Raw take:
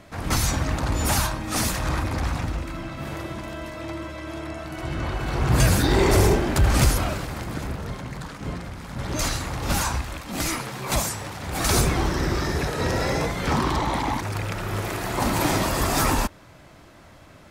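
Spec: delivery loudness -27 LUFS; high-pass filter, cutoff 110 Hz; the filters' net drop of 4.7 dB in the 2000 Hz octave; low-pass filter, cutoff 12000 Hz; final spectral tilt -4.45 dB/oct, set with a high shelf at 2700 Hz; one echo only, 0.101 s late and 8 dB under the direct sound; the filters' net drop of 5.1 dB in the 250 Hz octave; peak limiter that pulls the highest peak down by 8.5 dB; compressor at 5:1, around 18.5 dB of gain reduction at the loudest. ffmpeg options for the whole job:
-af "highpass=110,lowpass=12k,equalizer=f=250:t=o:g=-7,equalizer=f=2k:t=o:g=-4.5,highshelf=f=2.7k:g=-3.5,acompressor=threshold=-40dB:ratio=5,alimiter=level_in=12dB:limit=-24dB:level=0:latency=1,volume=-12dB,aecho=1:1:101:0.398,volume=17.5dB"

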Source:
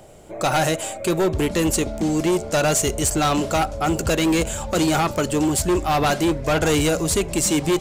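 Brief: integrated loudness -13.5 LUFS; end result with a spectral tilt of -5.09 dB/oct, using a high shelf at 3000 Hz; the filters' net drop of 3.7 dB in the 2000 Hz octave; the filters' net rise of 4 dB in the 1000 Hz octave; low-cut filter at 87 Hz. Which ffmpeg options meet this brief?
-af "highpass=87,equalizer=f=1k:t=o:g=8,equalizer=f=2k:t=o:g=-7,highshelf=f=3k:g=-5,volume=6.5dB"

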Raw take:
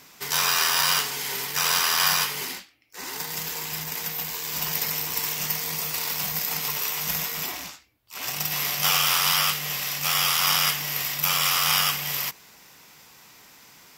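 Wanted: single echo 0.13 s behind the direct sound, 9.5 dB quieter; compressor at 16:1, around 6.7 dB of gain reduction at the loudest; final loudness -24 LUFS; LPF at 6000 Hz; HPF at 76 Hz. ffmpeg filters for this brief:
-af "highpass=76,lowpass=6k,acompressor=threshold=-26dB:ratio=16,aecho=1:1:130:0.335,volume=6dB"

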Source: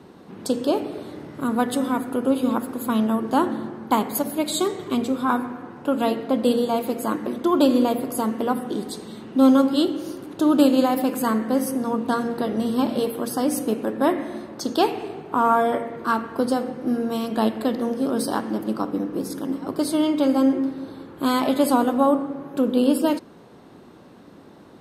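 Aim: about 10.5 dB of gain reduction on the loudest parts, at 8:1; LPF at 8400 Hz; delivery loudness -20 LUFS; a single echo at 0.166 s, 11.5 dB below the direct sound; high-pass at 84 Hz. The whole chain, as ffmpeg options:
-af "highpass=84,lowpass=8.4k,acompressor=threshold=-22dB:ratio=8,aecho=1:1:166:0.266,volume=7.5dB"

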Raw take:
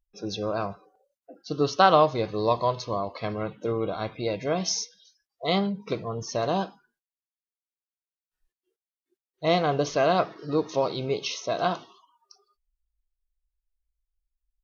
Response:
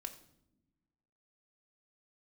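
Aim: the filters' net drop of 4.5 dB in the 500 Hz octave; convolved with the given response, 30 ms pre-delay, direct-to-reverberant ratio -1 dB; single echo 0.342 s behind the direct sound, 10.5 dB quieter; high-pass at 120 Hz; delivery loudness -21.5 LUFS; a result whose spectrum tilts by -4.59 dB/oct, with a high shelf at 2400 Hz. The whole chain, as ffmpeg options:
-filter_complex "[0:a]highpass=120,equalizer=f=500:t=o:g=-5.5,highshelf=f=2.4k:g=-3.5,aecho=1:1:342:0.299,asplit=2[a][b];[1:a]atrim=start_sample=2205,adelay=30[c];[b][c]afir=irnorm=-1:irlink=0,volume=4.5dB[d];[a][d]amix=inputs=2:normalize=0,volume=4dB"

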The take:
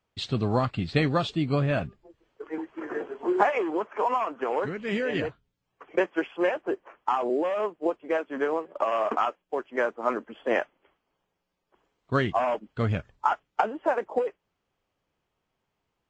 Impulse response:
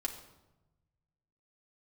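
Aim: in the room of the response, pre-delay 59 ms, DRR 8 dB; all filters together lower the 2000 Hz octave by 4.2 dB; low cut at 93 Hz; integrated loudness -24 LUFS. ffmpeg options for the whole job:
-filter_complex "[0:a]highpass=93,equalizer=f=2k:t=o:g=-5.5,asplit=2[a][b];[1:a]atrim=start_sample=2205,adelay=59[c];[b][c]afir=irnorm=-1:irlink=0,volume=-9dB[d];[a][d]amix=inputs=2:normalize=0,volume=4dB"

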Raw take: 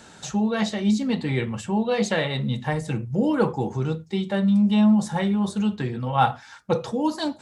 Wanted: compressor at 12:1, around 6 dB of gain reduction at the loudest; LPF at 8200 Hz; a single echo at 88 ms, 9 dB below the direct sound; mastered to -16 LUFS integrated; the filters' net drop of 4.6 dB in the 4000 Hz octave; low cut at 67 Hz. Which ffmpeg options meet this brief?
-af "highpass=67,lowpass=8.2k,equalizer=f=4k:t=o:g=-5.5,acompressor=threshold=-20dB:ratio=12,aecho=1:1:88:0.355,volume=10dB"

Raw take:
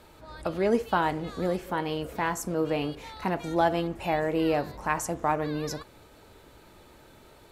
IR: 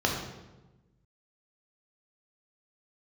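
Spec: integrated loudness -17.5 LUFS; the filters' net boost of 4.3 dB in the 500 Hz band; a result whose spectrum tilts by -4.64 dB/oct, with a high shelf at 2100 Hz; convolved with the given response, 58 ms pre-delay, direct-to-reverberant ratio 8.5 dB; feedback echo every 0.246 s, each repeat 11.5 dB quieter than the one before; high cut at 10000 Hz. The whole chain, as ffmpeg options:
-filter_complex "[0:a]lowpass=10k,equalizer=f=500:t=o:g=5,highshelf=f=2.1k:g=3,aecho=1:1:246|492|738:0.266|0.0718|0.0194,asplit=2[a][b];[1:a]atrim=start_sample=2205,adelay=58[c];[b][c]afir=irnorm=-1:irlink=0,volume=-20.5dB[d];[a][d]amix=inputs=2:normalize=0,volume=7.5dB"

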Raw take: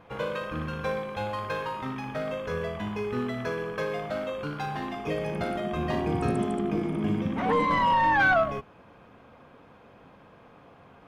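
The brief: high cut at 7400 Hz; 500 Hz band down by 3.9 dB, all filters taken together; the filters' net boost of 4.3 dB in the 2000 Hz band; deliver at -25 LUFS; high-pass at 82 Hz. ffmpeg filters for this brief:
-af "highpass=82,lowpass=7.4k,equalizer=f=500:t=o:g=-5.5,equalizer=f=2k:t=o:g=6.5,volume=2.5dB"

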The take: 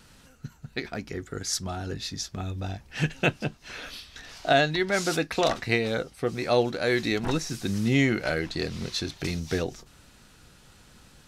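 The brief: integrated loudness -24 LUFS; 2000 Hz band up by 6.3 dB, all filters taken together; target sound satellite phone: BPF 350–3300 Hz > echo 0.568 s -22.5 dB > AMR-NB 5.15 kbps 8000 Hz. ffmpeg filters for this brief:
-af "highpass=350,lowpass=3.3k,equalizer=f=2k:t=o:g=8.5,aecho=1:1:568:0.075,volume=3.5dB" -ar 8000 -c:a libopencore_amrnb -b:a 5150

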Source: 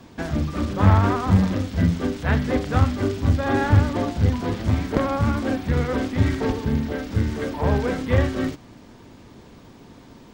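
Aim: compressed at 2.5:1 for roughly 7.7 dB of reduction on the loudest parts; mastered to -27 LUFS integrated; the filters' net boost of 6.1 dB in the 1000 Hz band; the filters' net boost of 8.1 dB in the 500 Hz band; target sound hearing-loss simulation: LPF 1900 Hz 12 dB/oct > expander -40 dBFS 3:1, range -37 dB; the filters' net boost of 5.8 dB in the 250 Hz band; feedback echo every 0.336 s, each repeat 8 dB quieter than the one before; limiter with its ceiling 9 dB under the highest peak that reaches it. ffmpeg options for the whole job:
-af "equalizer=f=250:t=o:g=5,equalizer=f=500:t=o:g=7,equalizer=f=1k:t=o:g=5.5,acompressor=threshold=-20dB:ratio=2.5,alimiter=limit=-15.5dB:level=0:latency=1,lowpass=1.9k,aecho=1:1:336|672|1008|1344|1680:0.398|0.159|0.0637|0.0255|0.0102,agate=range=-37dB:threshold=-40dB:ratio=3,volume=-2.5dB"

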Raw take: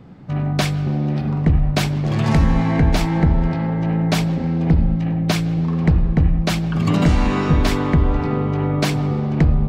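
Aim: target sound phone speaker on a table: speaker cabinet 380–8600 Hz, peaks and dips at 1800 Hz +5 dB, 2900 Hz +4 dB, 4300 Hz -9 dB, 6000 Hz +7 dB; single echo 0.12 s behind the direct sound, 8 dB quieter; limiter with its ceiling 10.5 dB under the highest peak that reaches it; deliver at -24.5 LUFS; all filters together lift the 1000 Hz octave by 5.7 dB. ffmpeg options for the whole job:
-af "equalizer=f=1k:t=o:g=7,alimiter=limit=-14dB:level=0:latency=1,highpass=f=380:w=0.5412,highpass=f=380:w=1.3066,equalizer=f=1.8k:t=q:w=4:g=5,equalizer=f=2.9k:t=q:w=4:g=4,equalizer=f=4.3k:t=q:w=4:g=-9,equalizer=f=6k:t=q:w=4:g=7,lowpass=f=8.6k:w=0.5412,lowpass=f=8.6k:w=1.3066,aecho=1:1:120:0.398,volume=3.5dB"

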